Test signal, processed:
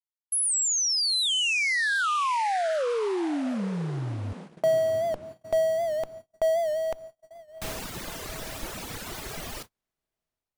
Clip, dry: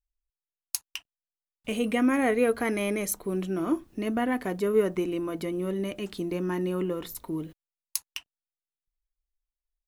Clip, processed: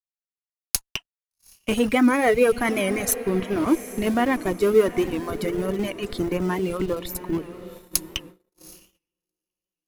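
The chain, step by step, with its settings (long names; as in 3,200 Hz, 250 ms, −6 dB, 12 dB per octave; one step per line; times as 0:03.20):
low-shelf EQ 170 Hz −3 dB
in parallel at −7.5 dB: comparator with hysteresis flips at −28 dBFS
on the sum: reverb reduction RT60 1.7 s
on a send: feedback delay with all-pass diffusion 770 ms, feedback 43%, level −14 dB
on the sum: noise gate −47 dBFS, range −39 dB
wow of a warped record 78 rpm, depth 100 cents
level +6.5 dB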